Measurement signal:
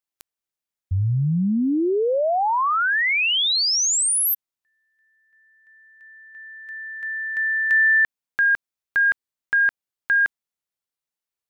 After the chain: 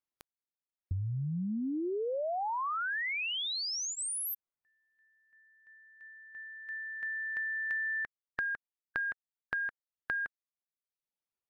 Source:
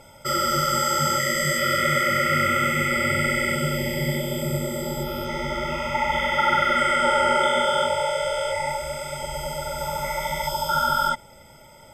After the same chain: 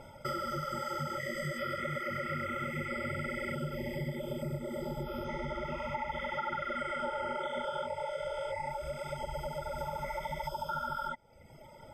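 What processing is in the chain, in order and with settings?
reverb removal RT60 0.88 s; treble shelf 2.5 kHz -11.5 dB; band-stop 7.4 kHz, Q 7.1; compression 4:1, threshold -35 dBFS

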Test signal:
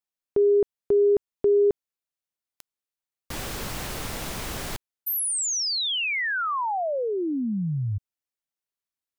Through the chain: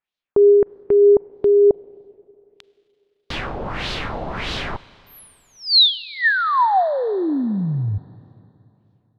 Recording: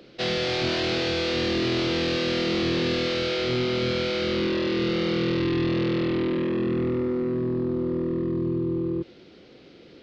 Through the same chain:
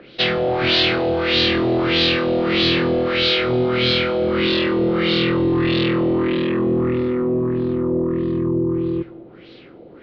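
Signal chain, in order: dynamic bell 4.2 kHz, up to +4 dB, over -41 dBFS, Q 1.2; LFO low-pass sine 1.6 Hz 690–3900 Hz; Schroeder reverb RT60 2.9 s, combs from 33 ms, DRR 19 dB; trim +5 dB

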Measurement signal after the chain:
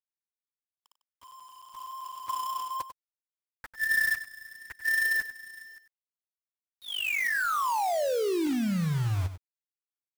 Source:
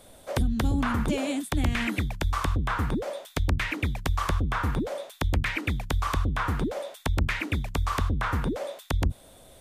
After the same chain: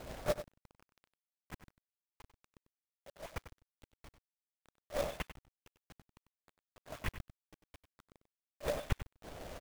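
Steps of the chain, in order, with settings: in parallel at -2 dB: compression 6:1, threshold -38 dBFS; on the sum: low-pass 2.7 kHz 24 dB/octave; inverted gate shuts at -22 dBFS, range -41 dB; LPC vocoder at 8 kHz whisper; level-controlled noise filter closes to 1.3 kHz, open at -29.5 dBFS; companded quantiser 4-bit; on a send: delay 96 ms -12 dB

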